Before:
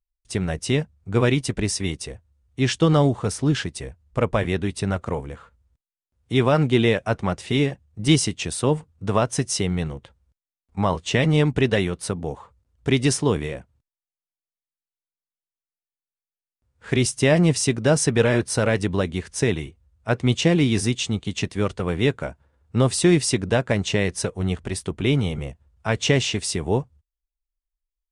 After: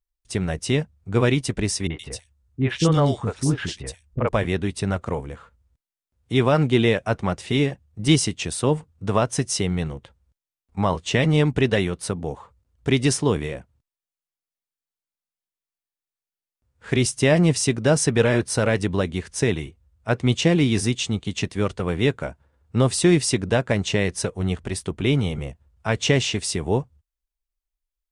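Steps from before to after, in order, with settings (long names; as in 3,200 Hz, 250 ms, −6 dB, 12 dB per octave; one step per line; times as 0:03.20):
0:01.87–0:04.29: three-band delay without the direct sound lows, mids, highs 30/120 ms, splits 380/2,800 Hz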